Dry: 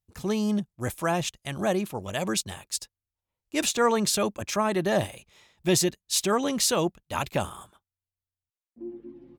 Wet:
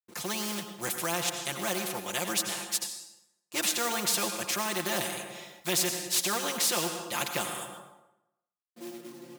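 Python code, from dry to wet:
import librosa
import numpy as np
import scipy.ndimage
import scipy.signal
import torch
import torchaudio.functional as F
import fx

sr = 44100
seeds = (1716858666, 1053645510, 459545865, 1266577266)

y = fx.quant_companded(x, sr, bits=6)
y = scipy.signal.sosfilt(scipy.signal.butter(2, 230.0, 'highpass', fs=sr, output='sos'), y)
y = y + 1.0 * np.pad(y, (int(5.7 * sr / 1000.0), 0))[:len(y)]
y = fx.rev_plate(y, sr, seeds[0], rt60_s=0.88, hf_ratio=0.75, predelay_ms=75, drr_db=11.5)
y = fx.spectral_comp(y, sr, ratio=2.0)
y = F.gain(torch.from_numpy(y), -8.5).numpy()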